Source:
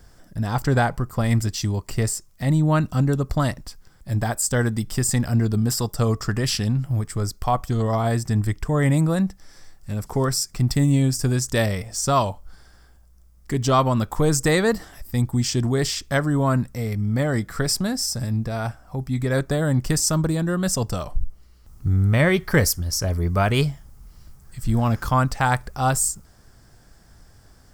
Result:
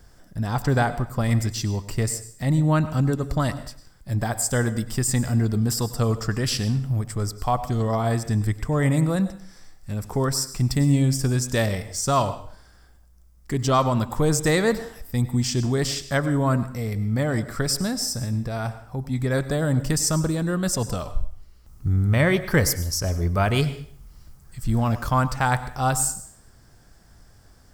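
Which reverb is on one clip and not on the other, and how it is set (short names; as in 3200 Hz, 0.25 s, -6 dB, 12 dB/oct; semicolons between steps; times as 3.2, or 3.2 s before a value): plate-style reverb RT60 0.56 s, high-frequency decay 0.95×, pre-delay 85 ms, DRR 13 dB; gain -1.5 dB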